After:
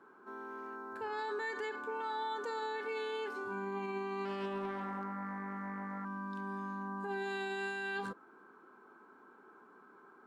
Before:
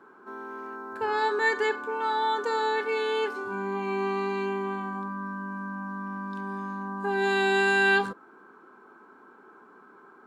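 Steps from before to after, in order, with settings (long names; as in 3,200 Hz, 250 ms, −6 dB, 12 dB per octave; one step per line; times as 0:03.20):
brickwall limiter −24.5 dBFS, peak gain reduction 11.5 dB
0:04.25–0:06.05: highs frequency-modulated by the lows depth 0.32 ms
level −6.5 dB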